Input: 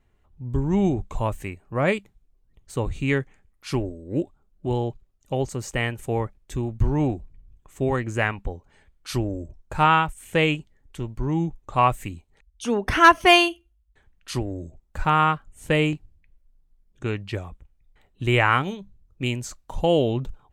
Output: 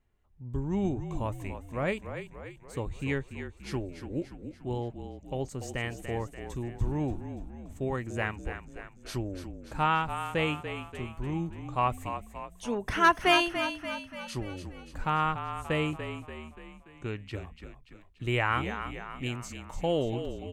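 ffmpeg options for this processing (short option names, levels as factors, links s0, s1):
-filter_complex "[0:a]asplit=7[s0][s1][s2][s3][s4][s5][s6];[s1]adelay=289,afreqshift=-38,volume=0.355[s7];[s2]adelay=578,afreqshift=-76,volume=0.195[s8];[s3]adelay=867,afreqshift=-114,volume=0.107[s9];[s4]adelay=1156,afreqshift=-152,volume=0.0589[s10];[s5]adelay=1445,afreqshift=-190,volume=0.0324[s11];[s6]adelay=1734,afreqshift=-228,volume=0.0178[s12];[s0][s7][s8][s9][s10][s11][s12]amix=inputs=7:normalize=0,volume=0.376"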